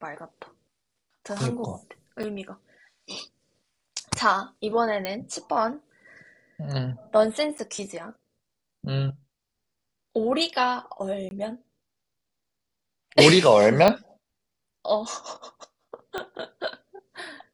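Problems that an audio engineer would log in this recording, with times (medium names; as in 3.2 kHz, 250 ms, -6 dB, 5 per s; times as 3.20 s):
2.23–2.24 s: dropout 5.6 ms
5.05 s: pop -13 dBFS
7.58–7.59 s: dropout 8.5 ms
11.29–11.31 s: dropout 21 ms
13.88 s: pop -6 dBFS
16.18 s: pop -16 dBFS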